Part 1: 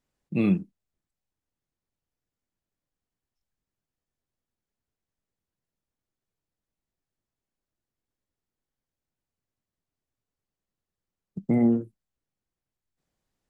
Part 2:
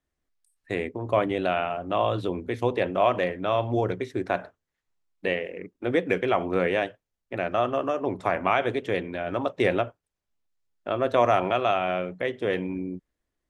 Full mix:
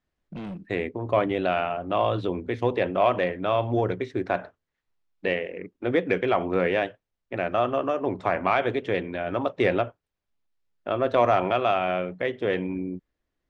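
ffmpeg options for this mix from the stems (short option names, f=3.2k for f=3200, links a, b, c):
-filter_complex "[0:a]acompressor=threshold=-22dB:ratio=6,asoftclip=type=hard:threshold=-28.5dB,volume=-4.5dB[a];[1:a]acontrast=53,volume=-5dB,asplit=2[b][c];[c]apad=whole_len=594954[d];[a][d]sidechaincompress=threshold=-41dB:ratio=8:attack=16:release=640[e];[e][b]amix=inputs=2:normalize=0,lowpass=4.8k"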